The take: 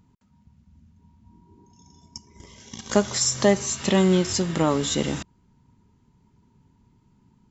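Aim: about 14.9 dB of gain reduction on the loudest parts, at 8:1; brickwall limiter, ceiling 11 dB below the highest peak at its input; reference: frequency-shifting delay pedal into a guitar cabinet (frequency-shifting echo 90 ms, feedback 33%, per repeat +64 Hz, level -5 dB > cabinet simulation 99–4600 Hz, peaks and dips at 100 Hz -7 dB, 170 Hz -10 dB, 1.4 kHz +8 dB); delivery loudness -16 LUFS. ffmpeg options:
-filter_complex "[0:a]acompressor=threshold=0.0398:ratio=8,alimiter=level_in=1.19:limit=0.0631:level=0:latency=1,volume=0.841,asplit=5[s0][s1][s2][s3][s4];[s1]adelay=90,afreqshift=64,volume=0.562[s5];[s2]adelay=180,afreqshift=128,volume=0.186[s6];[s3]adelay=270,afreqshift=192,volume=0.061[s7];[s4]adelay=360,afreqshift=256,volume=0.0202[s8];[s0][s5][s6][s7][s8]amix=inputs=5:normalize=0,highpass=99,equalizer=f=100:t=q:w=4:g=-7,equalizer=f=170:t=q:w=4:g=-10,equalizer=f=1400:t=q:w=4:g=8,lowpass=f=4600:w=0.5412,lowpass=f=4600:w=1.3066,volume=11.9"

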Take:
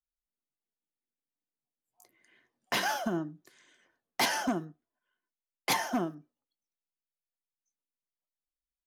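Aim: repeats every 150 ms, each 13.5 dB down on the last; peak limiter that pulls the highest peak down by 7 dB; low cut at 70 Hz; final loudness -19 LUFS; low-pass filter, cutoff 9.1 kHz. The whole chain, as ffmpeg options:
-af "highpass=70,lowpass=9100,alimiter=level_in=1.06:limit=0.0631:level=0:latency=1,volume=0.944,aecho=1:1:150|300:0.211|0.0444,volume=6.68"

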